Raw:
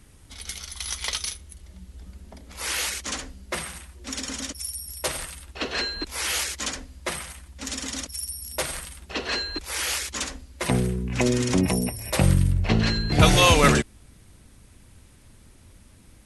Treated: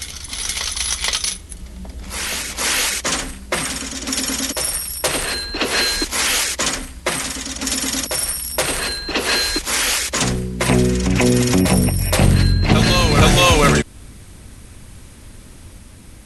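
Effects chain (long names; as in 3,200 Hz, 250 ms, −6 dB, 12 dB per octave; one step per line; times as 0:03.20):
in parallel at +2 dB: downward compressor, threshold −28 dBFS, peak gain reduction 16 dB
on the sum: soft clipping −8.5 dBFS, distortion −18 dB
backwards echo 473 ms −5.5 dB
level +4 dB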